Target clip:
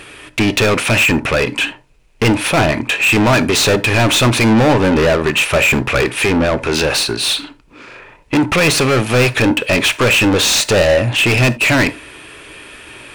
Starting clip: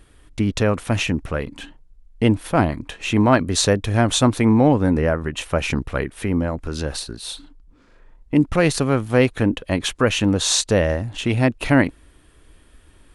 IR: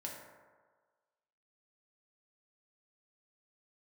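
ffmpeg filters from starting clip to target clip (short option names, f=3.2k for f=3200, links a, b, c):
-filter_complex "[0:a]equalizer=f=125:t=o:w=0.33:g=8,equalizer=f=400:t=o:w=0.33:g=5,equalizer=f=2.5k:t=o:w=0.33:g=11,asplit=2[a][b];[b]highpass=f=720:p=1,volume=33dB,asoftclip=type=tanh:threshold=0dB[c];[a][c]amix=inputs=2:normalize=0,lowpass=f=5.8k:p=1,volume=-6dB,asplit=2[d][e];[1:a]atrim=start_sample=2205,atrim=end_sample=3969[f];[e][f]afir=irnorm=-1:irlink=0,volume=-5dB[g];[d][g]amix=inputs=2:normalize=0,volume=-7.5dB"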